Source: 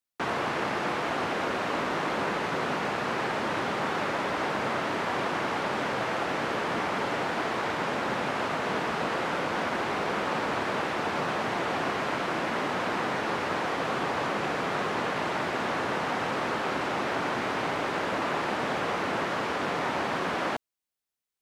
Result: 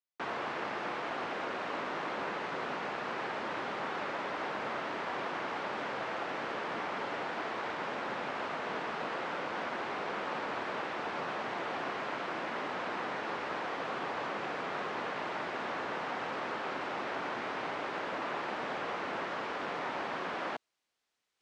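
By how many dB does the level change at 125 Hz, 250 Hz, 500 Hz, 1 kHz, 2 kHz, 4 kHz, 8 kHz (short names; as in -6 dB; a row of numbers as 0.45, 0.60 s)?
-13.0, -10.0, -7.5, -7.0, -7.0, -8.0, -13.0 dB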